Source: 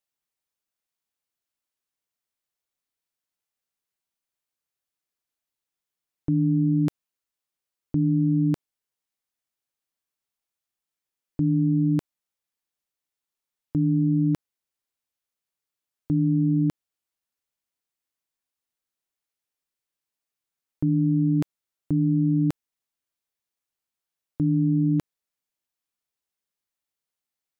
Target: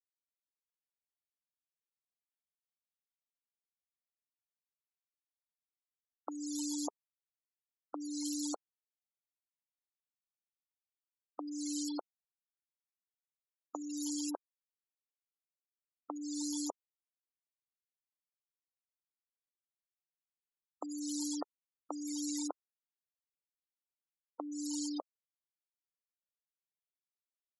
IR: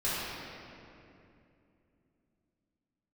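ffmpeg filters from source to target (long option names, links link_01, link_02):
-filter_complex "[0:a]lowpass=1100,aeval=exprs='val(0)+0.00891*(sin(2*PI*60*n/s)+sin(2*PI*2*60*n/s)/2+sin(2*PI*3*60*n/s)/3+sin(2*PI*4*60*n/s)/4+sin(2*PI*5*60*n/s)/5)':channel_layout=same,asplit=2[link_01][link_02];[link_02]acrusher=bits=5:mix=0:aa=0.000001,volume=-11.5dB[link_03];[link_01][link_03]amix=inputs=2:normalize=0,acompressor=threshold=-36dB:ratio=1.5,aeval=exprs='0.119*(cos(1*acos(clip(val(0)/0.119,-1,1)))-cos(1*PI/2))+0.00106*(cos(6*acos(clip(val(0)/0.119,-1,1)))-cos(6*PI/2))':channel_layout=same,highpass=frequency=560:width=0.5412,highpass=frequency=560:width=1.3066,afwtdn=0.000501,alimiter=level_in=12dB:limit=-24dB:level=0:latency=1:release=318,volume=-12dB,crystalizer=i=6.5:c=0,afftfilt=real='re*gte(hypot(re,im),0.00794)':imag='im*gte(hypot(re,im),0.00794)':win_size=1024:overlap=0.75,volume=12.5dB"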